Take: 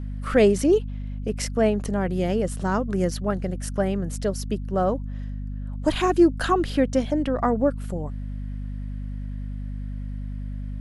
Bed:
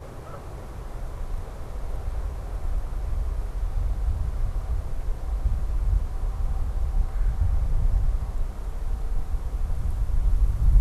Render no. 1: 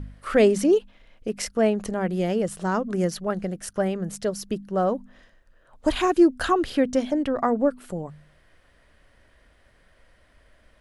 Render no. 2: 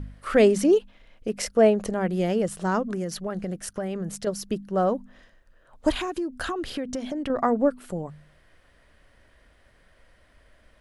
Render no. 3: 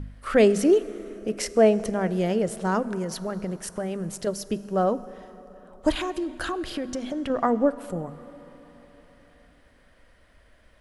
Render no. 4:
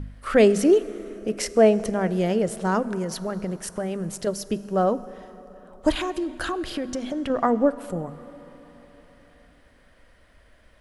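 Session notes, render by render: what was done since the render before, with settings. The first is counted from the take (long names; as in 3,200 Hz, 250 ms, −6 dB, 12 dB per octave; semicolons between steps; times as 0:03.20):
hum removal 50 Hz, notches 5
0:01.33–0:01.90: parametric band 540 Hz +6.5 dB; 0:02.85–0:04.27: downward compressor 10 to 1, threshold −25 dBFS; 0:05.91–0:07.30: downward compressor 8 to 1, threshold −26 dBFS
dense smooth reverb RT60 4.2 s, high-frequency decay 0.6×, DRR 15 dB
level +1.5 dB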